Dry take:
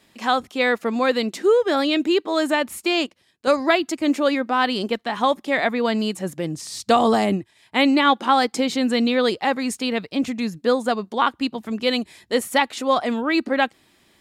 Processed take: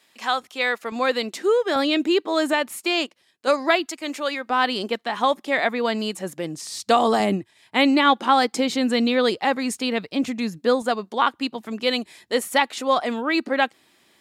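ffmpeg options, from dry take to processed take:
-af "asetnsamples=n=441:p=0,asendcmd='0.92 highpass f 430;1.76 highpass f 150;2.53 highpass f 380;3.86 highpass f 1100;4.5 highpass f 300;7.2 highpass f 120;10.82 highpass f 280',highpass=f=940:p=1"

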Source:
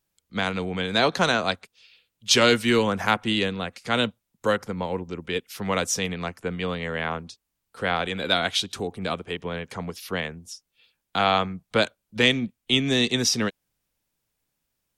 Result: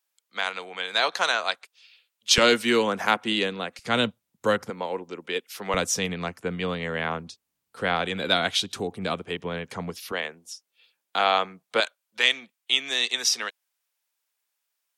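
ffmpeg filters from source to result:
-af "asetnsamples=n=441:p=0,asendcmd='2.38 highpass f 240;3.79 highpass f 94;4.7 highpass f 340;5.74 highpass f 96;10.12 highpass f 400;11.8 highpass f 870',highpass=750"

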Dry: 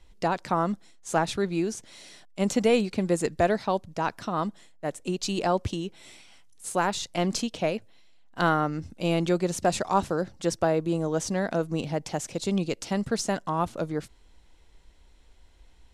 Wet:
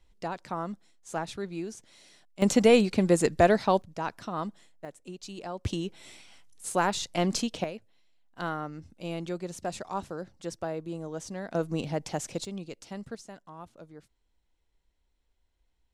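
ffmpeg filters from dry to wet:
-af "asetnsamples=n=441:p=0,asendcmd='2.42 volume volume 2.5dB;3.82 volume volume -5dB;4.85 volume volume -13dB;5.65 volume volume -0.5dB;7.64 volume volume -10dB;11.55 volume volume -2dB;12.45 volume volume -12dB;13.15 volume volume -18.5dB',volume=-8.5dB"

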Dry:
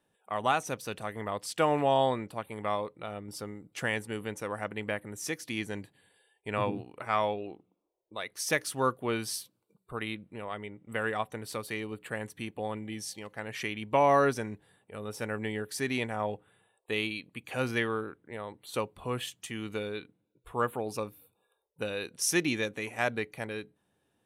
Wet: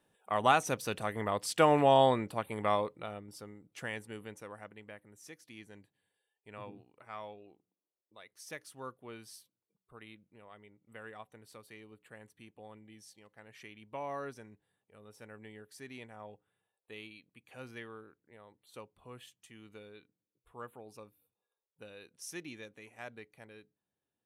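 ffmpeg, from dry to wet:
-af "volume=1.5dB,afade=t=out:st=2.79:d=0.52:silence=0.316228,afade=t=out:st=4.15:d=0.69:silence=0.398107"

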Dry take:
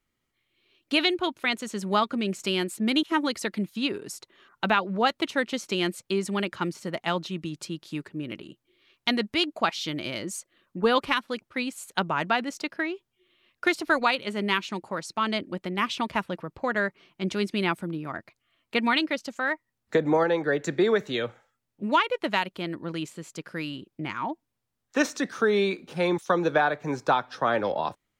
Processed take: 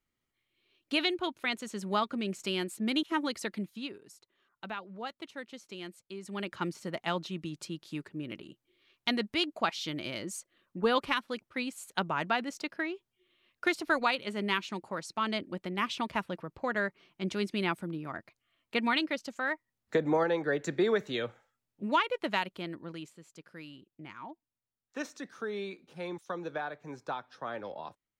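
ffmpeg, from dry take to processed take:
-af "volume=5.5dB,afade=t=out:st=3.52:d=0.46:silence=0.298538,afade=t=in:st=6.2:d=0.4:silence=0.266073,afade=t=out:st=22.46:d=0.72:silence=0.354813"

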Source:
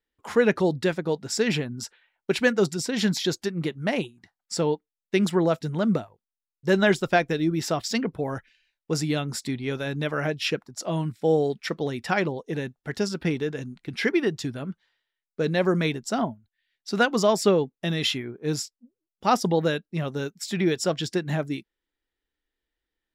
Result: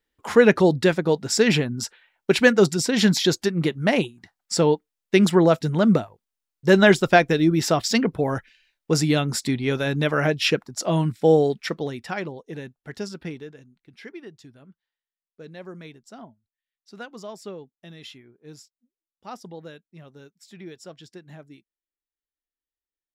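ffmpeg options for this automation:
-af "volume=5.5dB,afade=t=out:st=11.25:d=0.86:silence=0.281838,afade=t=out:st=13.09:d=0.57:silence=0.266073"

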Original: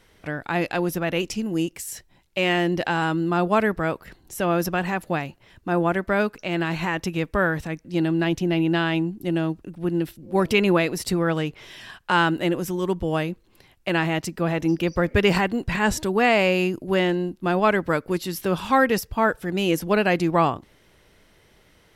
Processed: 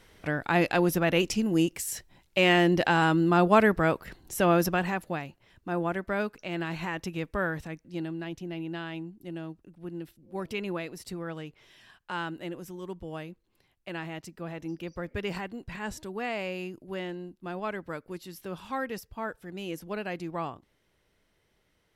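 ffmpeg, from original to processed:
-af "afade=t=out:st=4.47:d=0.68:silence=0.398107,afade=t=out:st=7.6:d=0.62:silence=0.473151"

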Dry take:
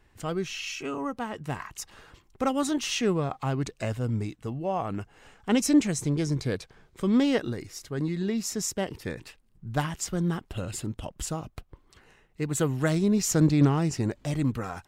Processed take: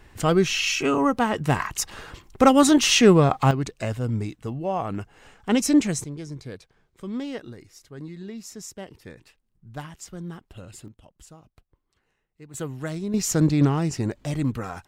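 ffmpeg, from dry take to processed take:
-af "asetnsamples=n=441:p=0,asendcmd='3.51 volume volume 2.5dB;6.04 volume volume -8.5dB;10.88 volume volume -15.5dB;12.54 volume volume -6dB;13.14 volume volume 1.5dB',volume=11dB"

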